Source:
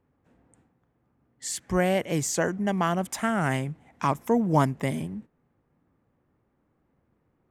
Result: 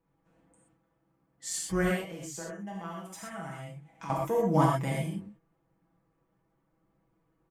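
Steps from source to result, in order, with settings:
comb filter 6.1 ms, depth 87%
0:01.91–0:04.10: downward compressor 2.5 to 1, threshold −39 dBFS, peak gain reduction 15.5 dB
reverb whose tail is shaped and stops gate 150 ms flat, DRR −3.5 dB
level −9 dB

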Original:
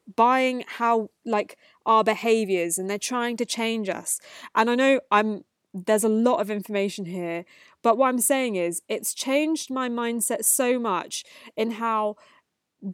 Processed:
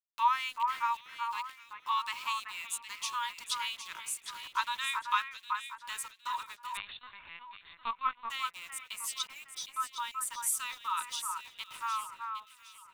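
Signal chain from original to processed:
0:09.19–0:10.00: expanding power law on the bin magnitudes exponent 1.7
Chebyshev high-pass with heavy ripple 920 Hz, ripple 9 dB
centre clipping without the shift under −45 dBFS
delay that swaps between a low-pass and a high-pass 381 ms, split 2,100 Hz, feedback 58%, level −4.5 dB
0:06.77–0:08.30: linear-prediction vocoder at 8 kHz pitch kept
level −2.5 dB

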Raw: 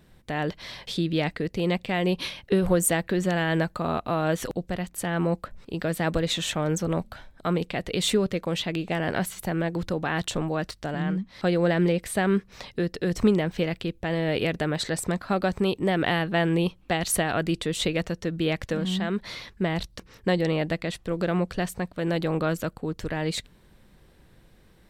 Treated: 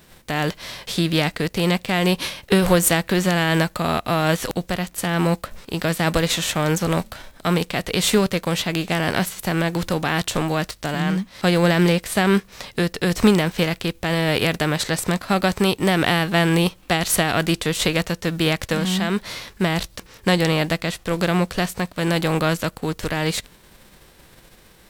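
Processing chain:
spectral envelope flattened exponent 0.6
level +5.5 dB

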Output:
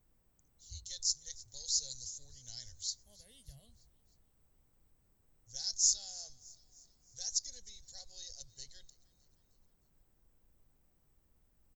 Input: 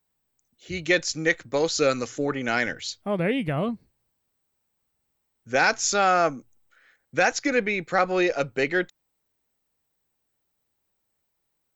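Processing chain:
inverse Chebyshev band-stop filter 160–2,600 Hz, stop band 40 dB
background noise brown −68 dBFS
repeating echo 309 ms, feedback 53%, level −22 dB
level −1.5 dB

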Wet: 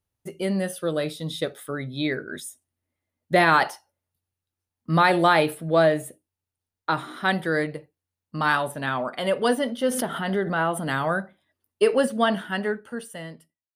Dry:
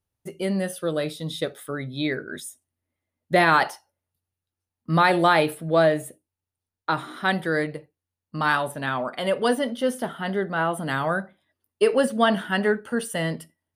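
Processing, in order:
fade-out on the ending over 1.86 s
0:09.91–0:10.99: background raised ahead of every attack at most 46 dB per second

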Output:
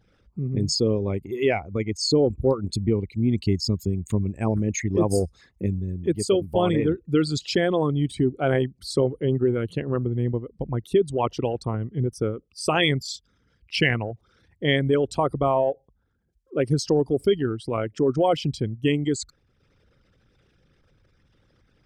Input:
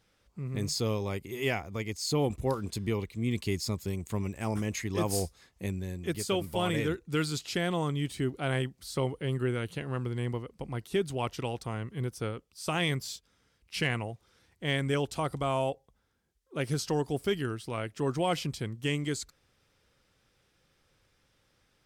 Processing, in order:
spectral envelope exaggerated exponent 2
transient designer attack +2 dB, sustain −4 dB
level +8 dB

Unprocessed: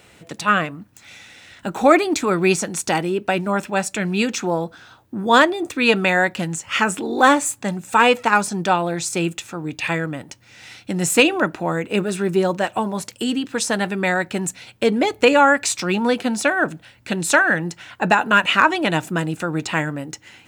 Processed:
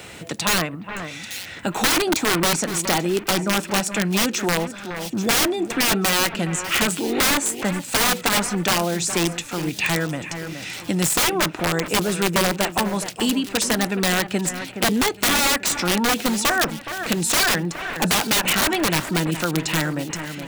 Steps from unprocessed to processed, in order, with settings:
wrap-around overflow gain 13 dB
delay that swaps between a low-pass and a high-pass 419 ms, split 2,500 Hz, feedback 59%, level −12 dB
multiband upward and downward compressor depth 40%

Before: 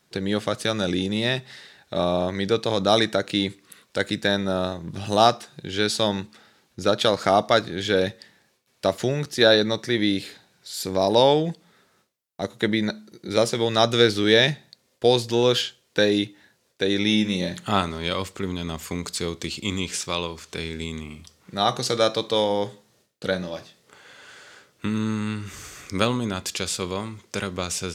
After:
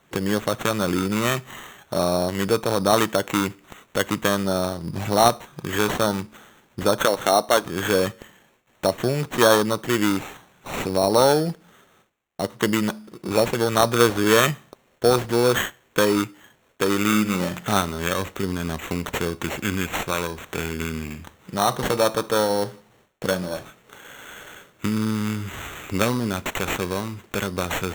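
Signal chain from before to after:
0:07.05–0:07.66: high-pass filter 260 Hz 12 dB per octave
in parallel at +1 dB: downward compressor, threshold −31 dBFS, peak gain reduction 18.5 dB
on the sum: decimation without filtering 9×
level −1 dB

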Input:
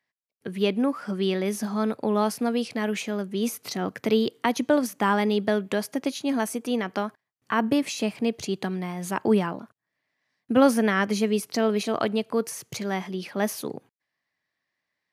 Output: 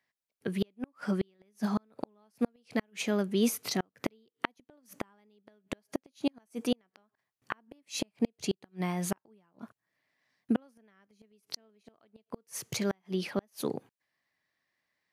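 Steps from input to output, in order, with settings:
gate with flip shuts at −17 dBFS, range −41 dB

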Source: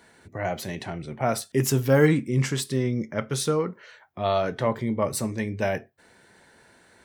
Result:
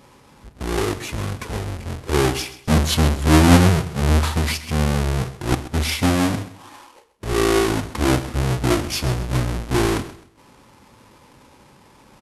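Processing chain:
each half-wave held at its own peak
repeating echo 75 ms, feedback 30%, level −15.5 dB
wrong playback speed 78 rpm record played at 45 rpm
level +1.5 dB

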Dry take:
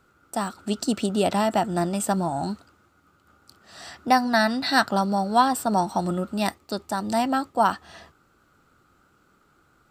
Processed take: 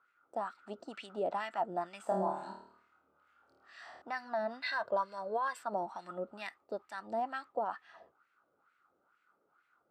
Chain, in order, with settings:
0:04.62–0:05.59: comb filter 1.9 ms, depth 69%
brickwall limiter −14.5 dBFS, peak gain reduction 10.5 dB
auto-filter band-pass sine 2.2 Hz 500–2,200 Hz
0:02.03–0:04.02: flutter between parallel walls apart 4.5 metres, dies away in 0.59 s
level −4.5 dB

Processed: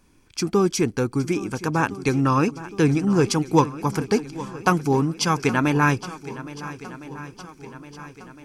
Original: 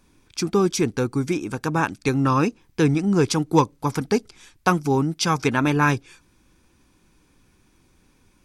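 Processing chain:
notch filter 3,700 Hz, Q 9.9
feedback echo with a long and a short gap by turns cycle 1,360 ms, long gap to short 1.5 to 1, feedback 50%, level −16 dB

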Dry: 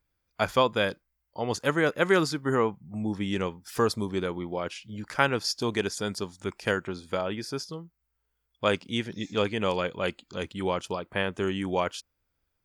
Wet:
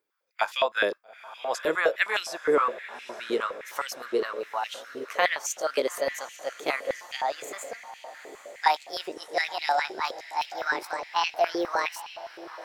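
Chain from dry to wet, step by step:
pitch glide at a constant tempo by +10.5 semitones starting unshifted
feedback delay with all-pass diffusion 876 ms, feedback 61%, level −15 dB
high-pass on a step sequencer 9.7 Hz 400–2,600 Hz
level −2 dB

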